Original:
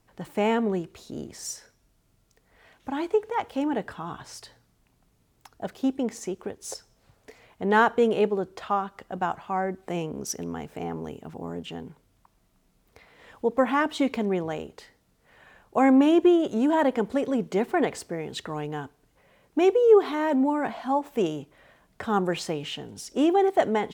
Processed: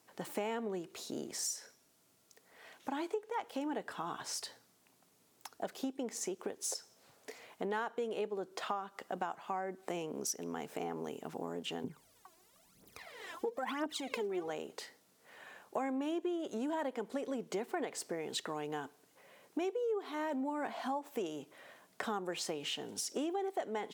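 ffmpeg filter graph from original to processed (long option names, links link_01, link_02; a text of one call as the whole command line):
ffmpeg -i in.wav -filter_complex "[0:a]asettb=1/sr,asplit=3[link_01][link_02][link_03];[link_01]atrim=end=11.844[link_04];[link_02]atrim=start=11.84:end=14.5,asetpts=PTS-STARTPTS,afade=type=in:duration=0.004:curve=qsin,afade=type=out:start_time=2.656:duration=0.004:curve=qsin,lowshelf=frequency=98:gain=9.5,acompressor=threshold=-25dB:ratio=5:attack=3.2:release=140:knee=1:detection=peak,aphaser=in_gain=1:out_gain=1:delay=3.1:decay=0.77:speed=1:type=triangular[link_05];[link_03]atrim=start=14.496[link_06];[link_04][link_05]acrossfade=duration=0.004:curve1=hsin:curve2=qsin[link_07];[link_07][link_06]acrossfade=duration=0.004:curve1=qsin:curve2=hsin,bass=frequency=250:gain=-5,treble=frequency=4000:gain=5,acompressor=threshold=-35dB:ratio=6,highpass=190" out.wav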